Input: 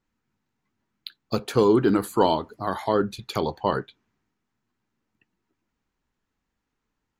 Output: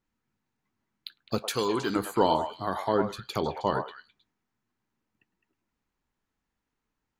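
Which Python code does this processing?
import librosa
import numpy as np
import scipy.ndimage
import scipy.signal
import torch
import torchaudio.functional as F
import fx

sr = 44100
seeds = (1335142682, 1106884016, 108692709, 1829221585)

y = fx.tilt_shelf(x, sr, db=-8.5, hz=1300.0, at=(1.38, 1.96))
y = fx.echo_stepped(y, sr, ms=105, hz=790.0, octaves=1.4, feedback_pct=70, wet_db=-4.0)
y = F.gain(torch.from_numpy(y), -3.5).numpy()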